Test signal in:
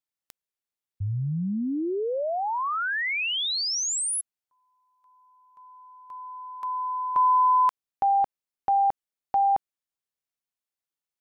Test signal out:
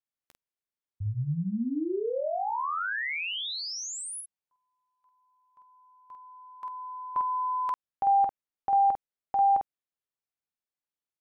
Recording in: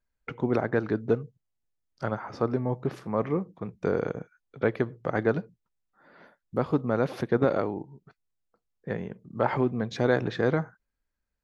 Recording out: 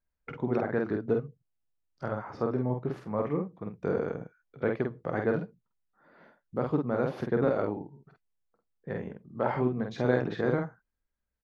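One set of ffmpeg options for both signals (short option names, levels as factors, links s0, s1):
-filter_complex "[0:a]highshelf=f=3400:g=-8.5,asplit=2[s0][s1];[s1]aecho=0:1:13|48:0.168|0.668[s2];[s0][s2]amix=inputs=2:normalize=0,volume=0.631"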